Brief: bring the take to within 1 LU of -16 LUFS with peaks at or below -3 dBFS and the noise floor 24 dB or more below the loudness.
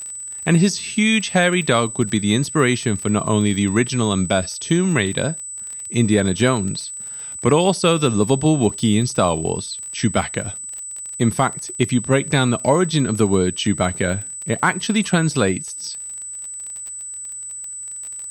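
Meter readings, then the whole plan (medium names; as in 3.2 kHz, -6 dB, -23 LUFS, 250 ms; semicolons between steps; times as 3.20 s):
tick rate 26 per s; steady tone 8 kHz; tone level -29 dBFS; loudness -19.5 LUFS; peak level -3.5 dBFS; loudness target -16.0 LUFS
-> de-click; band-stop 8 kHz, Q 30; trim +3.5 dB; peak limiter -3 dBFS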